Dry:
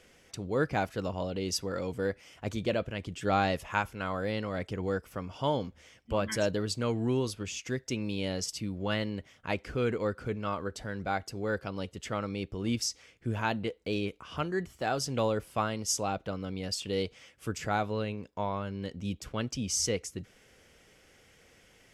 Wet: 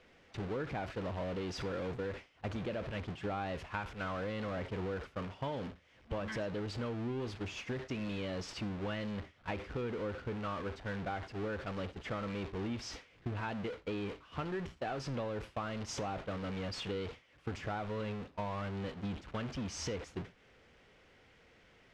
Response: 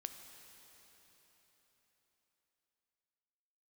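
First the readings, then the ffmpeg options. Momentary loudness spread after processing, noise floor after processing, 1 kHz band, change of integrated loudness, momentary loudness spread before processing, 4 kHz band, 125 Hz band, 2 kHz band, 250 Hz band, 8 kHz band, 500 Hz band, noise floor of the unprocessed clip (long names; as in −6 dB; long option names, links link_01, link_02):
4 LU, −64 dBFS, −7.5 dB, −7.0 dB, 8 LU, −9.0 dB, −5.0 dB, −6.5 dB, −5.5 dB, −15.0 dB, −7.0 dB, −62 dBFS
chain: -filter_complex "[0:a]aeval=exprs='val(0)+0.5*0.0447*sgn(val(0))':channel_layout=same,agate=range=-33dB:threshold=-30dB:ratio=16:detection=peak,lowpass=3100,acompressor=threshold=-44dB:ratio=4,asplit=2[link_01][link_02];[1:a]atrim=start_sample=2205,atrim=end_sample=4410[link_03];[link_02][link_03]afir=irnorm=-1:irlink=0,volume=4.5dB[link_04];[link_01][link_04]amix=inputs=2:normalize=0,volume=-2dB"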